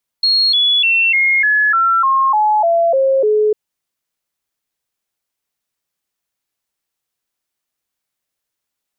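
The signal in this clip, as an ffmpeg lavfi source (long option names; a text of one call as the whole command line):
ffmpeg -f lavfi -i "aevalsrc='0.316*clip(min(mod(t,0.3),0.3-mod(t,0.3))/0.005,0,1)*sin(2*PI*4290*pow(2,-floor(t/0.3)/3)*mod(t,0.3))':duration=3.3:sample_rate=44100" out.wav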